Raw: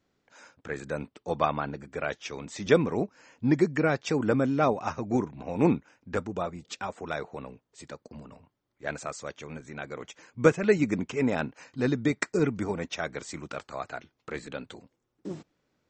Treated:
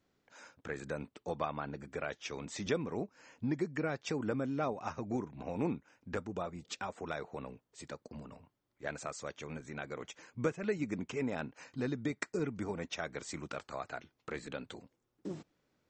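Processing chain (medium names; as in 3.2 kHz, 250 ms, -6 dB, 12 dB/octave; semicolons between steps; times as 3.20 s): compression 2:1, threshold -35 dBFS, peak gain reduction 12 dB; trim -2.5 dB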